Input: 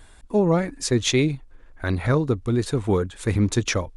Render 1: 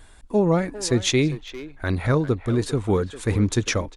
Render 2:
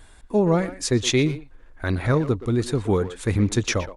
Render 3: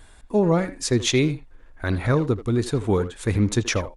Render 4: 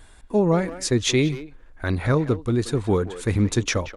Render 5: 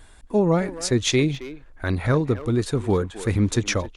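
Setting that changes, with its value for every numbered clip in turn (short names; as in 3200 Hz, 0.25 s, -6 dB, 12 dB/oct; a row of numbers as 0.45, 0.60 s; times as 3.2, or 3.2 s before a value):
speakerphone echo, time: 400, 120, 80, 180, 270 ms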